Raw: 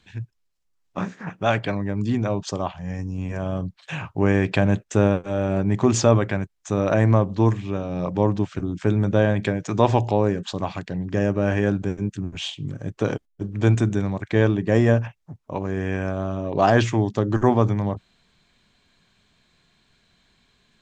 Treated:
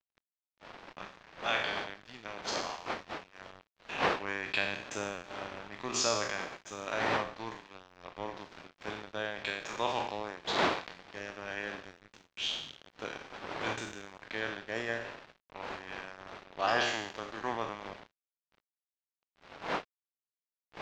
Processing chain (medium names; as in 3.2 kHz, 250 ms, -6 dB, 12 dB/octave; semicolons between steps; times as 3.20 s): spectral sustain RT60 1.15 s; wind noise 630 Hz -24 dBFS; differentiator; crossover distortion -44.5 dBFS; distance through air 210 m; trim +7 dB